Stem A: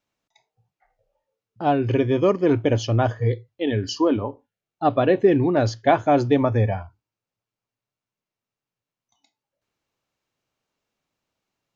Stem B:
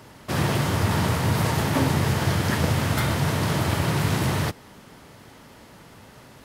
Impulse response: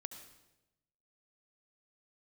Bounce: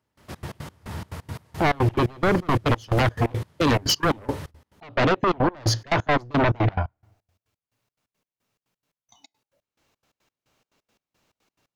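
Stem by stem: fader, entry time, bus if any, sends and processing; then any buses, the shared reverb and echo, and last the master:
0.0 dB, 0.00 s, send −21 dB, brickwall limiter −16 dBFS, peak gain reduction 11.5 dB; sine wavefolder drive 8 dB, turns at −16 dBFS
−7.0 dB, 0.00 s, no send, parametric band 77 Hz +13 dB 0.27 octaves; automatic ducking −6 dB, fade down 0.55 s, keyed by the first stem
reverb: on, RT60 1.0 s, pre-delay 64 ms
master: gate pattern "..xx.x.x" 175 BPM −24 dB

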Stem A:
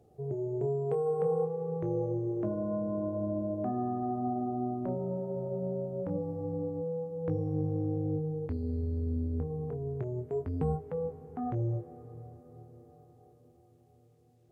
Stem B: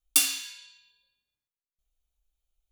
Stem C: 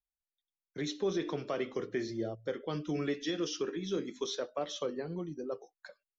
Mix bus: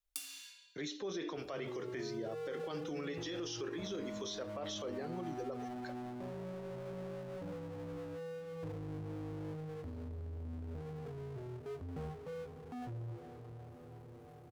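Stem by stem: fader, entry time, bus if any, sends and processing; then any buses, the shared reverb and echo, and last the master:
−16.5 dB, 1.35 s, bus A, no send, power curve on the samples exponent 0.5
−12.0 dB, 0.00 s, no bus, no send, downward compressor 12 to 1, threshold −28 dBFS, peak gain reduction 13.5 dB
+2.0 dB, 0.00 s, bus A, no send, low-shelf EQ 220 Hz −10 dB
bus A: 0.0 dB, brickwall limiter −33 dBFS, peak gain reduction 11 dB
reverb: not used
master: no processing

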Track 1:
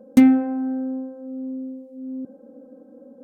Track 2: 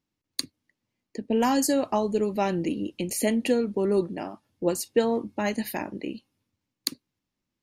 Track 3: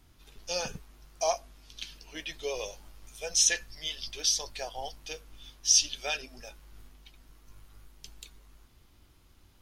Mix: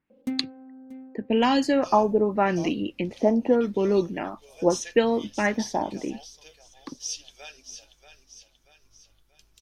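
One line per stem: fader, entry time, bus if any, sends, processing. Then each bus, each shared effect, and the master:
−10.0 dB, 0.10 s, no send, echo send −24 dB, automatic ducking −11 dB, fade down 0.25 s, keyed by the second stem
+1.5 dB, 0.00 s, no send, no echo send, auto-filter low-pass sine 0.82 Hz 800–3,600 Hz
−11.0 dB, 1.35 s, no send, echo send −9.5 dB, no processing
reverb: not used
echo: repeating echo 634 ms, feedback 46%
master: no processing

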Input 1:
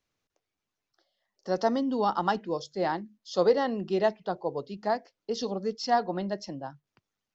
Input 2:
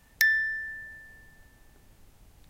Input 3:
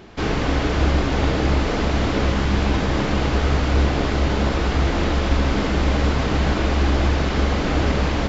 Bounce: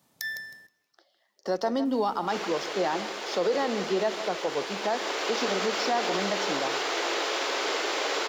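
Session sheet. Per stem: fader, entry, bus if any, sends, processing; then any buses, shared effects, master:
−1.5 dB, 0.00 s, no send, echo send −15 dB, high-pass filter 230 Hz 12 dB per octave; multiband upward and downward compressor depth 40%
−2.0 dB, 0.00 s, muted 0:00.67–0:01.85, no send, echo send −19 dB, high-pass filter 130 Hz 24 dB per octave; flat-topped bell 2,100 Hz −12 dB 1 octave
0:04.66 −14.5 dB → 0:05.41 −8 dB, 2.10 s, no send, no echo send, Chebyshev high-pass filter 380 Hz, order 4; high-shelf EQ 3,200 Hz +11 dB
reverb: not used
echo: repeating echo 158 ms, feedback 28%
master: leveller curve on the samples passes 1; brickwall limiter −18 dBFS, peak gain reduction 8.5 dB

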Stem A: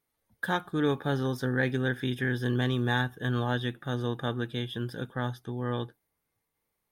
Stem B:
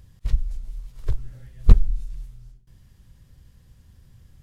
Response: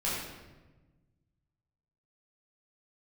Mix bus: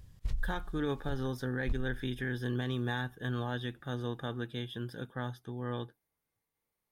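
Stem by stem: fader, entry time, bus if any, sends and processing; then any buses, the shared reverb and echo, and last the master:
−5.5 dB, 0.00 s, no send, no processing
−3.5 dB, 0.00 s, no send, automatic ducking −14 dB, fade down 1.80 s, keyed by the first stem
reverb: not used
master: brickwall limiter −24 dBFS, peak gain reduction 9 dB

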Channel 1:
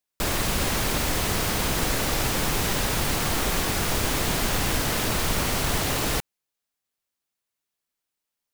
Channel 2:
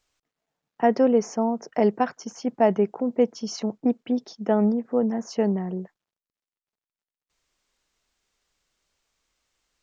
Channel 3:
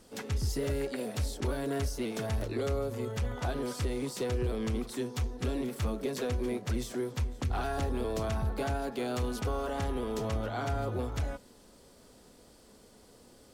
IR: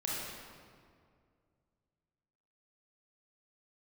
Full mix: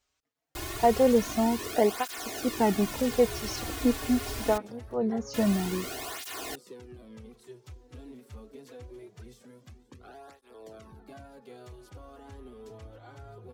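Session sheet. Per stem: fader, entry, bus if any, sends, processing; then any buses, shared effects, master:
−10.5 dB, 0.35 s, muted 0:04.58–0:05.34, no send, comb filter 2.8 ms, depth 80%
−0.5 dB, 0.00 s, no send, no processing
−13.0 dB, 2.50 s, no send, parametric band 400 Hz +3 dB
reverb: not used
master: through-zero flanger with one copy inverted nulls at 0.24 Hz, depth 6.2 ms

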